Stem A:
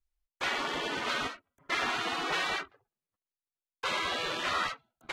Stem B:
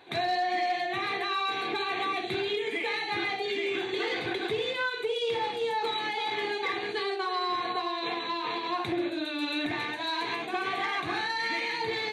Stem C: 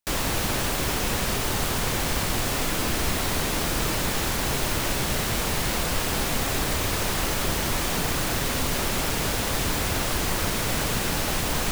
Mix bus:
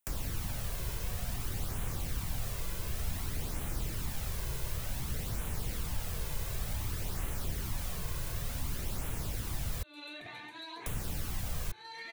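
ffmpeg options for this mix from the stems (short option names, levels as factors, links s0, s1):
-filter_complex "[1:a]adelay=550,volume=0.355[s0];[2:a]volume=1.26,asplit=3[s1][s2][s3];[s1]atrim=end=9.83,asetpts=PTS-STARTPTS,afade=t=out:st=9.826:d=0.004:c=hsin[s4];[s2]atrim=start=9.83:end=10.86,asetpts=PTS-STARTPTS,volume=0[s5];[s3]atrim=start=10.86,asetpts=PTS-STARTPTS,afade=t=in:d=0.004:c=hsin[s6];[s4][s5][s6]concat=n=3:v=0:a=1[s7];[s0][s7]amix=inputs=2:normalize=0,highshelf=f=9100:g=9.5,acompressor=threshold=0.0631:ratio=3,volume=1,flanger=delay=0.1:depth=1.9:regen=-31:speed=0.55:shape=sinusoidal,acrossover=split=140[s8][s9];[s9]acompressor=threshold=0.00891:ratio=6[s10];[s8][s10]amix=inputs=2:normalize=0"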